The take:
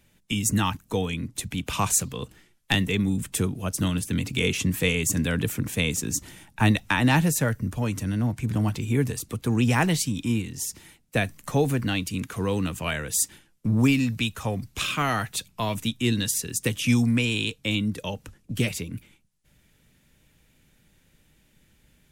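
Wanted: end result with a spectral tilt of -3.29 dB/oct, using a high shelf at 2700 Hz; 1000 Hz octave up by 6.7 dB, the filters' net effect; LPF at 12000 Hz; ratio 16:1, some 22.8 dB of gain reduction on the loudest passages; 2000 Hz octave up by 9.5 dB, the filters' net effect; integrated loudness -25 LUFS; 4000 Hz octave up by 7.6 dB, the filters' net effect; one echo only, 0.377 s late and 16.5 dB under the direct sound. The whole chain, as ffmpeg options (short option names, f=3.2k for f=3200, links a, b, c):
-af "lowpass=12k,equalizer=f=1k:t=o:g=5.5,equalizer=f=2k:t=o:g=8,highshelf=f=2.7k:g=3.5,equalizer=f=4k:t=o:g=3.5,acompressor=threshold=-33dB:ratio=16,aecho=1:1:377:0.15,volume=12dB"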